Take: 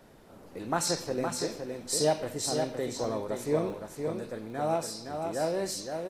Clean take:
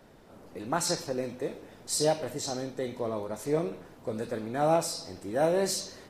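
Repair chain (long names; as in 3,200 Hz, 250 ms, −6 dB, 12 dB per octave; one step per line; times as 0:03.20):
repair the gap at 0:03.04/0:03.38/0:03.70/0:04.50, 1.2 ms
downward expander −39 dBFS, range −21 dB
echo removal 514 ms −5.5 dB
level correction +4.5 dB, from 0:04.08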